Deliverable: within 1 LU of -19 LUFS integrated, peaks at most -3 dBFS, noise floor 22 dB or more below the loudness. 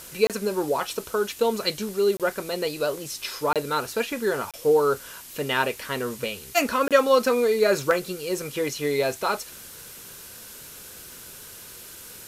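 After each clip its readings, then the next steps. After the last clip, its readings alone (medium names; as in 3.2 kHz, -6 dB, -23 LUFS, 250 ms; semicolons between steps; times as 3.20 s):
dropouts 5; longest dropout 27 ms; noise floor -43 dBFS; noise floor target -47 dBFS; loudness -24.5 LUFS; peak level -5.5 dBFS; loudness target -19.0 LUFS
-> interpolate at 0.27/2.17/3.53/4.51/6.88 s, 27 ms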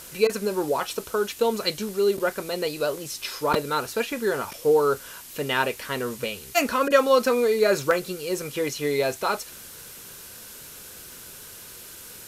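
dropouts 0; noise floor -43 dBFS; noise floor target -47 dBFS
-> noise reduction 6 dB, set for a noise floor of -43 dBFS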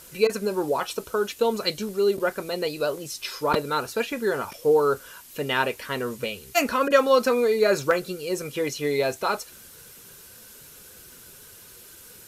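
noise floor -48 dBFS; loudness -25.0 LUFS; peak level -5.5 dBFS; loudness target -19.0 LUFS
-> trim +6 dB; peak limiter -3 dBFS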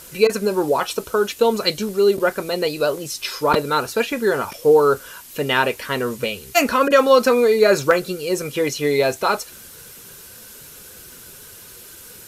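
loudness -19.0 LUFS; peak level -3.0 dBFS; noise floor -42 dBFS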